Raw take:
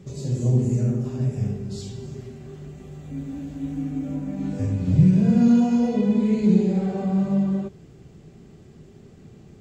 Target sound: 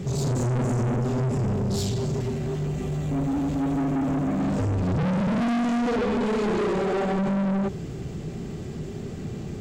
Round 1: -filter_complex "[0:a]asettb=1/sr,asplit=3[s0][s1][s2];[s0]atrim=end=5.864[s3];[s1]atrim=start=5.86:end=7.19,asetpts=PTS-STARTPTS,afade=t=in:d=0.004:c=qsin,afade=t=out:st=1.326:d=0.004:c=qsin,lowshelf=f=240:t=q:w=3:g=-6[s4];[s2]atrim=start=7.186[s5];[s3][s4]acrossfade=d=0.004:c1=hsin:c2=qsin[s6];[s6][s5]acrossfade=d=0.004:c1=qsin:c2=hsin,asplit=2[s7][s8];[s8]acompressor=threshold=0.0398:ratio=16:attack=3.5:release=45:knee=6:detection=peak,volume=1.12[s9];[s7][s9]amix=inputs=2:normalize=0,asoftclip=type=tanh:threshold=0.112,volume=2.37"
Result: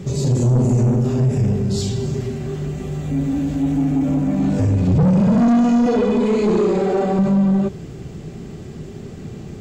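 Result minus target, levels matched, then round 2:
saturation: distortion -6 dB
-filter_complex "[0:a]asettb=1/sr,asplit=3[s0][s1][s2];[s0]atrim=end=5.864[s3];[s1]atrim=start=5.86:end=7.19,asetpts=PTS-STARTPTS,afade=t=in:d=0.004:c=qsin,afade=t=out:st=1.326:d=0.004:c=qsin,lowshelf=f=240:t=q:w=3:g=-6[s4];[s2]atrim=start=7.186[s5];[s3][s4]acrossfade=d=0.004:c1=hsin:c2=qsin[s6];[s6][s5]acrossfade=d=0.004:c1=qsin:c2=hsin,asplit=2[s7][s8];[s8]acompressor=threshold=0.0398:ratio=16:attack=3.5:release=45:knee=6:detection=peak,volume=1.12[s9];[s7][s9]amix=inputs=2:normalize=0,asoftclip=type=tanh:threshold=0.0316,volume=2.37"

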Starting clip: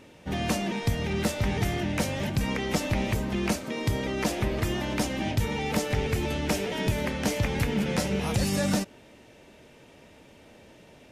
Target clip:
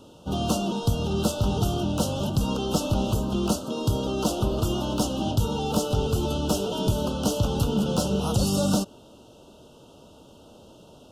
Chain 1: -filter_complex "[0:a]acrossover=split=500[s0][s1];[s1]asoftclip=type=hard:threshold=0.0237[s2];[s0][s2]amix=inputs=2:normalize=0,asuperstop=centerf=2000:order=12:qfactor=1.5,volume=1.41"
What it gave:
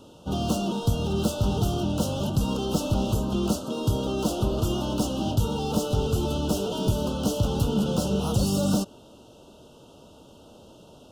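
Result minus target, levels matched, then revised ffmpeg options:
hard clipper: distortion +11 dB
-filter_complex "[0:a]acrossover=split=500[s0][s1];[s1]asoftclip=type=hard:threshold=0.0596[s2];[s0][s2]amix=inputs=2:normalize=0,asuperstop=centerf=2000:order=12:qfactor=1.5,volume=1.41"

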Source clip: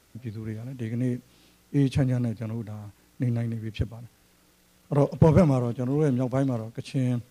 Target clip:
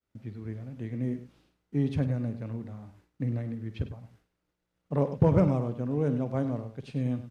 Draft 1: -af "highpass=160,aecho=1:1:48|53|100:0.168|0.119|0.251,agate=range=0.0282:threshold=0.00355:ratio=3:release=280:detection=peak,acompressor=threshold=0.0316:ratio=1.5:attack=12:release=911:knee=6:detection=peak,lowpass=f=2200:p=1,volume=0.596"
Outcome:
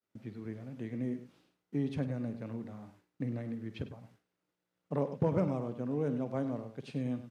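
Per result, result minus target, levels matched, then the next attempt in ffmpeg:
compression: peak gain reduction +6.5 dB; 125 Hz band -2.5 dB
-af "highpass=160,aecho=1:1:48|53|100:0.168|0.119|0.251,agate=range=0.0282:threshold=0.00355:ratio=3:release=280:detection=peak,lowpass=f=2200:p=1,volume=0.596"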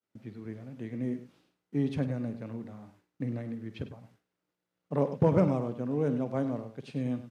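125 Hz band -3.0 dB
-af "aecho=1:1:48|53|100:0.168|0.119|0.251,agate=range=0.0282:threshold=0.00355:ratio=3:release=280:detection=peak,lowpass=f=2200:p=1,volume=0.596"

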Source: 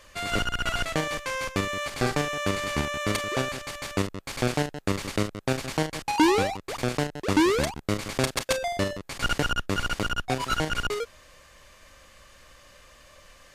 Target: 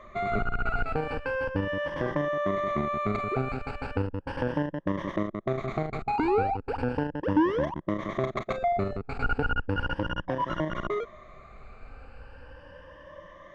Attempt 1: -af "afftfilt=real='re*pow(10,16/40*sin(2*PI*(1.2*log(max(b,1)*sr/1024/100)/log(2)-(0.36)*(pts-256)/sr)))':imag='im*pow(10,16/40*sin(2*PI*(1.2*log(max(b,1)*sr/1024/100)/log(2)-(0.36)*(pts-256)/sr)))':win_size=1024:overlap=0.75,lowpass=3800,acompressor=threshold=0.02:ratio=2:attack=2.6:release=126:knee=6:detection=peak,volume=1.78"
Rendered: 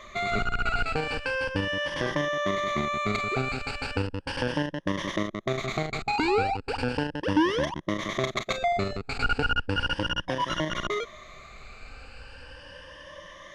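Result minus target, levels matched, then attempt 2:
4 kHz band +11.5 dB
-af "afftfilt=real='re*pow(10,16/40*sin(2*PI*(1.2*log(max(b,1)*sr/1024/100)/log(2)-(0.36)*(pts-256)/sr)))':imag='im*pow(10,16/40*sin(2*PI*(1.2*log(max(b,1)*sr/1024/100)/log(2)-(0.36)*(pts-256)/sr)))':win_size=1024:overlap=0.75,lowpass=1300,acompressor=threshold=0.02:ratio=2:attack=2.6:release=126:knee=6:detection=peak,volume=1.78"

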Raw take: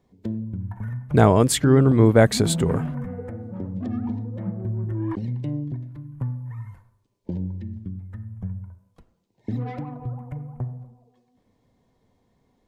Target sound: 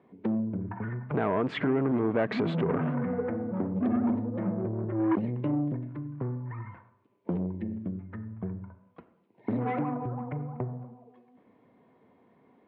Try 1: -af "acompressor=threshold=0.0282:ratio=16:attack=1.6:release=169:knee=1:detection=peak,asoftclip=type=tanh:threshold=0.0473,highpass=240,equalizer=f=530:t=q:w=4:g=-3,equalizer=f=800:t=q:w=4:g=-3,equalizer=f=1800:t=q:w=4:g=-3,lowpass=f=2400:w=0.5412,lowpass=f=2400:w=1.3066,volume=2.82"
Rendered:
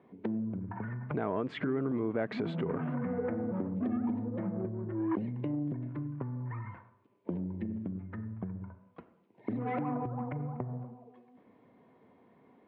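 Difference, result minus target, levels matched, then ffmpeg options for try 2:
compression: peak gain reduction +9 dB
-af "acompressor=threshold=0.0841:ratio=16:attack=1.6:release=169:knee=1:detection=peak,asoftclip=type=tanh:threshold=0.0473,highpass=240,equalizer=f=530:t=q:w=4:g=-3,equalizer=f=800:t=q:w=4:g=-3,equalizer=f=1800:t=q:w=4:g=-3,lowpass=f=2400:w=0.5412,lowpass=f=2400:w=1.3066,volume=2.82"

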